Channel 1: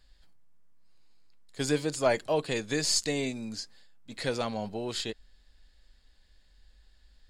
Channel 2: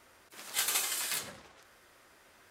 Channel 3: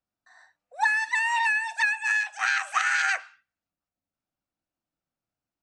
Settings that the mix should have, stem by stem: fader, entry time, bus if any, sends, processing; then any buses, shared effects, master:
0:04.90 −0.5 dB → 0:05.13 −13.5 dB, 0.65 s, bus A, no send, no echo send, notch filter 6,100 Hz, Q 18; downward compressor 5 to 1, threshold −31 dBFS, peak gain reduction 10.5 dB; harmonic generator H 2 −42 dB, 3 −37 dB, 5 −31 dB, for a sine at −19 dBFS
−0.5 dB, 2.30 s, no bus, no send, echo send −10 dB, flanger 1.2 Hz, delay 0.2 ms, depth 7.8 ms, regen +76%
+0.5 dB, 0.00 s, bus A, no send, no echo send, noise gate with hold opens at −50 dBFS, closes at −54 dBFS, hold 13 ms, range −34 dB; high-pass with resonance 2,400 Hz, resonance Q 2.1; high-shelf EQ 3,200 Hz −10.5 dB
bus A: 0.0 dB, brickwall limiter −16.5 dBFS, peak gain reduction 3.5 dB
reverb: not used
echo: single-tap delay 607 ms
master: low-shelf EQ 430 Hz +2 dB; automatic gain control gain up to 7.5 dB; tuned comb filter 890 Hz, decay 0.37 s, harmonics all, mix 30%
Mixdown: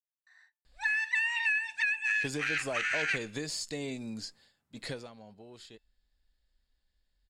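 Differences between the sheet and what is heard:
stem 2: muted
master: missing automatic gain control gain up to 7.5 dB

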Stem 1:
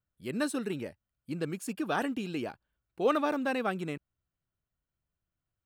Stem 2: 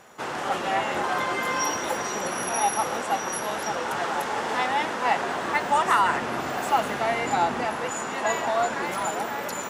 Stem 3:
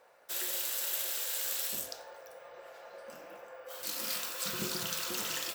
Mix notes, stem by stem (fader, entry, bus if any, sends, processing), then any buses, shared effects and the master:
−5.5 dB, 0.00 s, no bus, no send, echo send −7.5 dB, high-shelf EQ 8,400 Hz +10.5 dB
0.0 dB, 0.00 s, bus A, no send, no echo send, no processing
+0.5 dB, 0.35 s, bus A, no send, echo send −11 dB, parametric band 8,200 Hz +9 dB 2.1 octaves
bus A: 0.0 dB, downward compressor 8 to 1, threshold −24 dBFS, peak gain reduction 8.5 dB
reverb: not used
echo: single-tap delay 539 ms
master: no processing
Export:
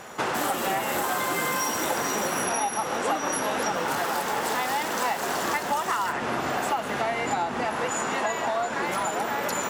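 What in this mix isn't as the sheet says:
stem 2 0.0 dB → +9.0 dB
stem 3: entry 0.35 s → 0.05 s

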